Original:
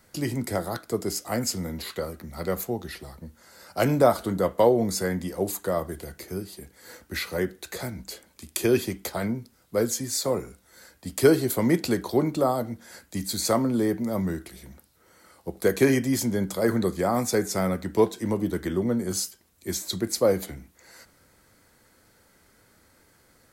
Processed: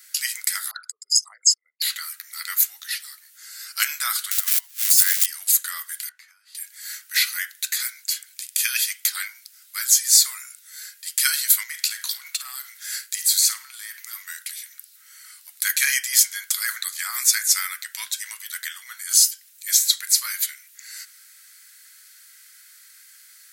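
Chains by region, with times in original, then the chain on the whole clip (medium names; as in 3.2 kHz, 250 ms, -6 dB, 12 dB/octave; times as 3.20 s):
0.71–1.82 s: resonances exaggerated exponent 3 + brick-wall FIR low-pass 12 kHz
4.31–5.26 s: zero-crossing glitches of -21 dBFS + rippled Chebyshev high-pass 250 Hz, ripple 3 dB + compressor with a negative ratio -29 dBFS, ratio -0.5
6.09–6.55 s: compression 4:1, threshold -36 dBFS + band-pass filter 800 Hz, Q 1.4
11.63–14.28 s: compression 4:1, threshold -32 dBFS + flutter echo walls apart 9 m, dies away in 0.24 s + waveshaping leveller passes 1
whole clip: steep high-pass 1.5 kHz 36 dB/octave; treble shelf 3.6 kHz +10 dB; loudness maximiser +8 dB; trim -1 dB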